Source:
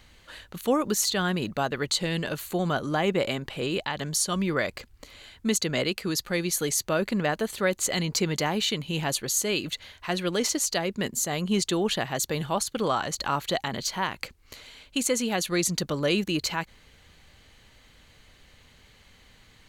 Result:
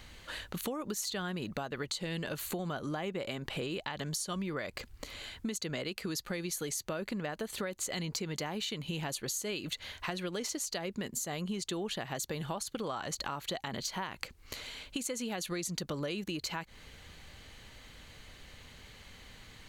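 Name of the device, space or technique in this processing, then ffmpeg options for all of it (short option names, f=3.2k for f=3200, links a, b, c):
serial compression, peaks first: -af "acompressor=threshold=-33dB:ratio=6,acompressor=threshold=-39dB:ratio=2,volume=3dB"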